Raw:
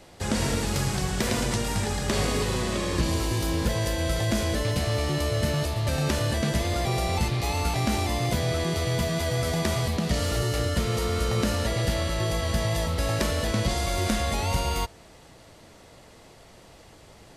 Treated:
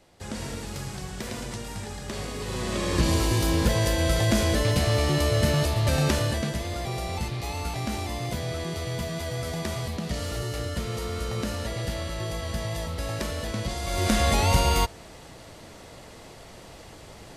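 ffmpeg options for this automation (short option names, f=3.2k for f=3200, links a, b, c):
-af "volume=13dB,afade=t=in:st=2.38:d=0.71:silence=0.266073,afade=t=out:st=6:d=0.56:silence=0.398107,afade=t=in:st=13.82:d=0.45:silence=0.316228"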